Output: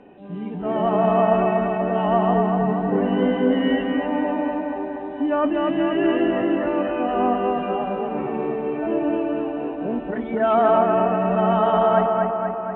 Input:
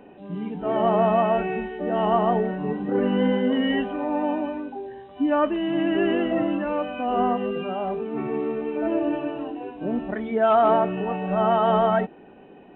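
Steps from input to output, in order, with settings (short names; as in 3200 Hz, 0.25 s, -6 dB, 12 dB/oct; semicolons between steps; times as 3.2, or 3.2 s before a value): air absorption 67 m; on a send: analogue delay 0.24 s, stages 4096, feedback 65%, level -3 dB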